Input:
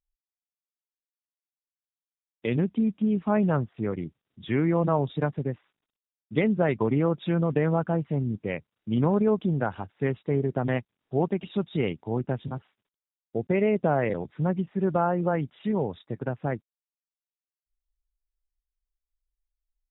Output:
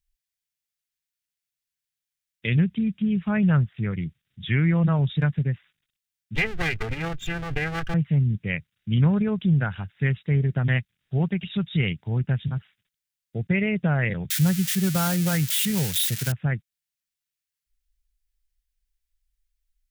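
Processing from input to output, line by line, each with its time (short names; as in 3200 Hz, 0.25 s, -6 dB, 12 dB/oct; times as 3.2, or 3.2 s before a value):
6.35–7.94 minimum comb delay 2.5 ms
14.3–16.32 switching spikes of -23 dBFS
whole clip: band shelf 530 Hz -15.5 dB 2.6 oct; gain +8.5 dB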